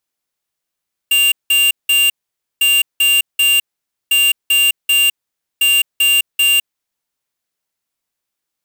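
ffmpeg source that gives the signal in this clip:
ffmpeg -f lavfi -i "aevalsrc='0.251*(2*lt(mod(2790*t,1),0.5)-1)*clip(min(mod(mod(t,1.5),0.39),0.21-mod(mod(t,1.5),0.39))/0.005,0,1)*lt(mod(t,1.5),1.17)':duration=6:sample_rate=44100" out.wav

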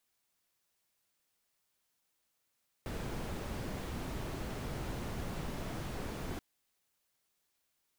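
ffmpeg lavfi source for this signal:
ffmpeg -f lavfi -i "anoisesrc=color=brown:amplitude=0.0525:duration=3.53:sample_rate=44100:seed=1" out.wav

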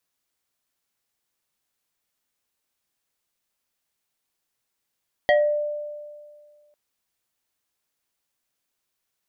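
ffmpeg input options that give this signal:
ffmpeg -f lavfi -i "aevalsrc='0.224*pow(10,-3*t/1.92)*sin(2*PI*593*t+1.4*pow(10,-3*t/0.36)*sin(2*PI*2.21*593*t))':duration=1.45:sample_rate=44100" out.wav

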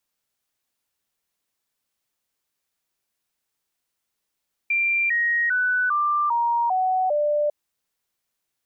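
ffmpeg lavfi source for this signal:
ffmpeg -f lavfi -i "aevalsrc='0.119*clip(min(mod(t,0.4),0.4-mod(t,0.4))/0.005,0,1)*sin(2*PI*2370*pow(2,-floor(t/0.4)/3)*mod(t,0.4))':duration=2.8:sample_rate=44100" out.wav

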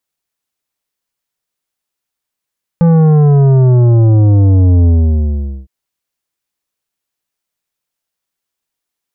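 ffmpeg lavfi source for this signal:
ffmpeg -f lavfi -i "aevalsrc='0.501*clip((2.86-t)/0.81,0,1)*tanh(3.35*sin(2*PI*170*2.86/log(65/170)*(exp(log(65/170)*t/2.86)-1)))/tanh(3.35)':duration=2.86:sample_rate=44100" out.wav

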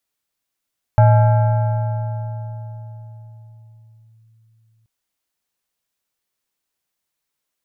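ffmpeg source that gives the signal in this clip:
ffmpeg -f lavfi -i "aevalsrc='0.473*pow(10,-3*t/4.59)*sin(2*PI*112*t+0.67*clip(1-t/3.25,0,1)*sin(2*PI*6.58*112*t))':duration=3.88:sample_rate=44100" out.wav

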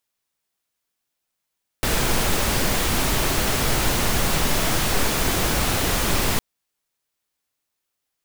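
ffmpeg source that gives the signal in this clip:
ffmpeg -f lavfi -i "anoisesrc=color=pink:amplitude=0.484:duration=4.56:sample_rate=44100:seed=1" out.wav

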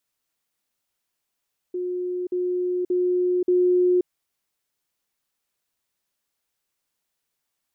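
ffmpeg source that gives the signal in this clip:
ffmpeg -f lavfi -i "aevalsrc='pow(10,(-24.5+3*floor(t/0.58))/20)*sin(2*PI*360*t)*clip(min(mod(t,0.58),0.53-mod(t,0.58))/0.005,0,1)':duration=2.32:sample_rate=44100" out.wav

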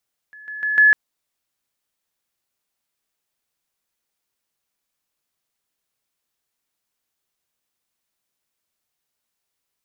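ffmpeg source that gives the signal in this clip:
ffmpeg -f lavfi -i "aevalsrc='pow(10,(-39+10*floor(t/0.15))/20)*sin(2*PI*1710*t)':duration=0.6:sample_rate=44100" out.wav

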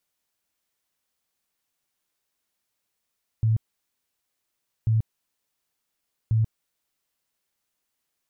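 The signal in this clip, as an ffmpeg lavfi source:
ffmpeg -f lavfi -i "aevalsrc='0.133*sin(2*PI*111*mod(t,1.44))*lt(mod(t,1.44),15/111)':duration=4.32:sample_rate=44100" out.wav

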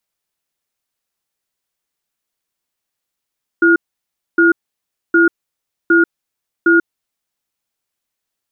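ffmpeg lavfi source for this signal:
ffmpeg -f lavfi -i "aevalsrc='0.316*(sin(2*PI*336*t)+sin(2*PI*1430*t))*clip(min(mod(t,0.76),0.14-mod(t,0.76))/0.005,0,1)':duration=3.8:sample_rate=44100" out.wav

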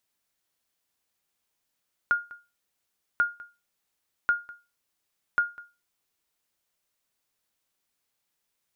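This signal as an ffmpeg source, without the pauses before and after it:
ffmpeg -f lavfi -i "aevalsrc='0.178*(sin(2*PI*1420*mod(t,1.09))*exp(-6.91*mod(t,1.09)/0.27)+0.0891*sin(2*PI*1420*max(mod(t,1.09)-0.2,0))*exp(-6.91*max(mod(t,1.09)-0.2,0)/0.27))':duration=4.36:sample_rate=44100" out.wav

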